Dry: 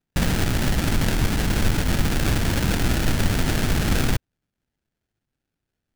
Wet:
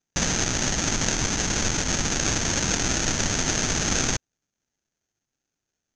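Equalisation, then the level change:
low-pass with resonance 6,400 Hz, resonance Q 11
high-frequency loss of the air 54 metres
low-shelf EQ 210 Hz −10 dB
0.0 dB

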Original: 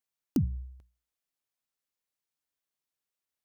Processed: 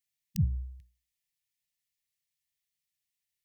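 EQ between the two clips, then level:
linear-phase brick-wall band-stop 190–1,700 Hz
+3.0 dB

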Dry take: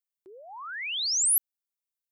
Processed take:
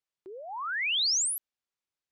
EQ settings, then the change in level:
high-frequency loss of the air 91 metres
+5.5 dB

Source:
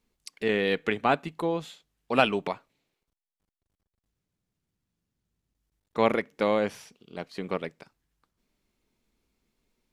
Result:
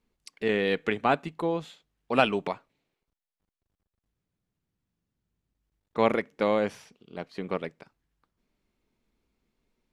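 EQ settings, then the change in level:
high-shelf EQ 4,500 Hz −9 dB
dynamic equaliser 8,000 Hz, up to +6 dB, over −52 dBFS, Q 0.74
0.0 dB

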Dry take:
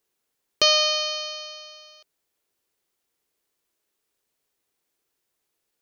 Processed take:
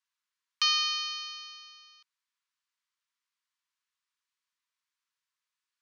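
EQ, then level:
Chebyshev high-pass filter 940 Hz, order 8
high-frequency loss of the air 70 metres
−4.5 dB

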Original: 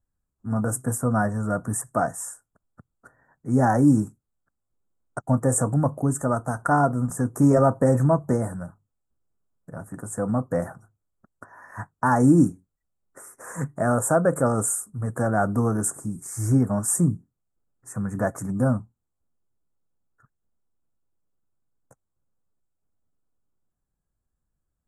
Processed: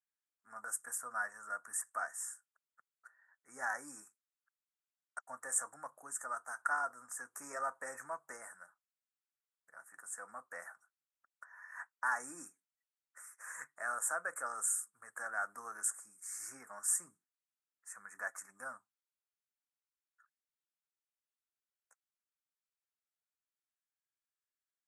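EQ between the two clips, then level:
resonant band-pass 1,800 Hz, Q 1.5
first difference
+8.5 dB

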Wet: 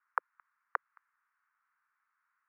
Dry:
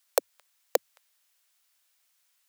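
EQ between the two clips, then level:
inverse Chebyshev high-pass filter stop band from 650 Hz, stop band 40 dB
inverse Chebyshev low-pass filter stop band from 3,200 Hz, stop band 50 dB
+15.5 dB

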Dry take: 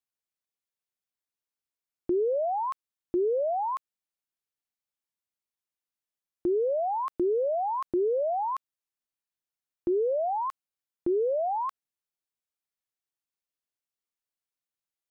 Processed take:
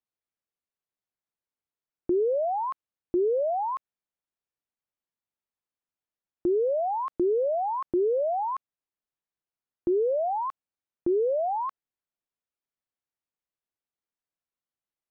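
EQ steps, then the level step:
low-pass filter 1,400 Hz 6 dB per octave
+2.0 dB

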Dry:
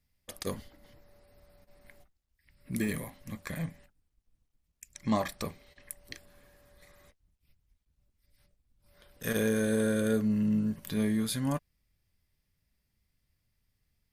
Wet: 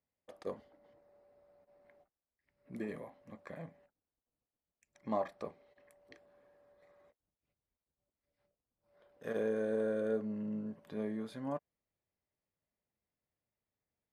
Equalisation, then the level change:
resonant band-pass 600 Hz, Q 1.2
−1.5 dB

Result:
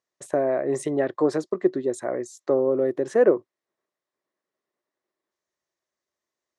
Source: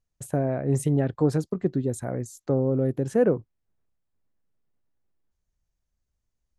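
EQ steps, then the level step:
loudspeaker in its box 330–9,200 Hz, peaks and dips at 360 Hz +10 dB, 600 Hz +8 dB, 1,100 Hz +9 dB, 1,900 Hz +9 dB, 3,800 Hz +4 dB, 5,500 Hz +3 dB
0.0 dB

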